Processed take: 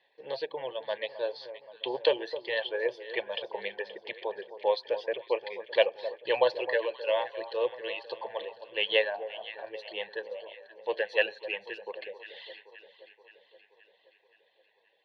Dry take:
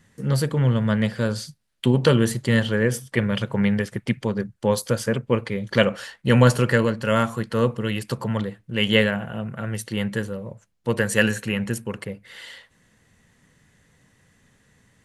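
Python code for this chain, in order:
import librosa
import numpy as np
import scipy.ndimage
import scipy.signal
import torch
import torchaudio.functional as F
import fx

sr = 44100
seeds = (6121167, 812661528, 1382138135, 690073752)

y = scipy.signal.sosfilt(scipy.signal.butter(4, 380.0, 'highpass', fs=sr, output='sos'), x)
y = fx.dereverb_blind(y, sr, rt60_s=1.6)
y = scipy.signal.sosfilt(scipy.signal.ellip(4, 1.0, 50, 4000.0, 'lowpass', fs=sr, output='sos'), y)
y = fx.fixed_phaser(y, sr, hz=560.0, stages=4)
y = y + 0.38 * np.pad(y, (int(1.2 * sr / 1000.0), 0))[:len(y)]
y = fx.echo_alternate(y, sr, ms=262, hz=1200.0, feedback_pct=75, wet_db=-12)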